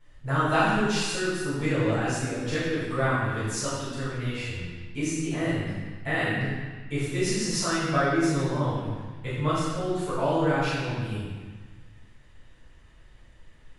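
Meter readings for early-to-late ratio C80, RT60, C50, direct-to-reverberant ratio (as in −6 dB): 0.0 dB, 1.4 s, −2.5 dB, −13.0 dB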